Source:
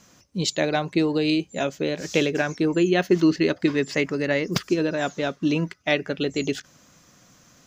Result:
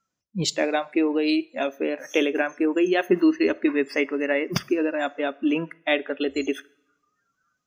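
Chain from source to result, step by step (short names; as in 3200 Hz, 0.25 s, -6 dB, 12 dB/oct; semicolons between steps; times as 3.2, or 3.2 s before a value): spectral noise reduction 28 dB; two-slope reverb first 0.64 s, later 1.6 s, from -22 dB, DRR 19.5 dB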